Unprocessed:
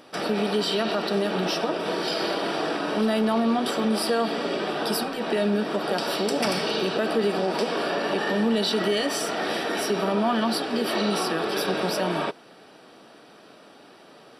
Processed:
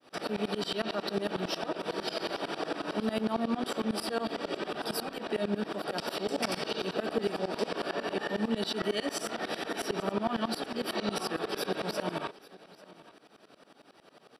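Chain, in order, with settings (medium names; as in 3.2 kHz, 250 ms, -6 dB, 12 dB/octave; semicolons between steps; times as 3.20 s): tremolo saw up 11 Hz, depth 100%; on a send: delay 841 ms -21 dB; on the sum: trim -3.5 dB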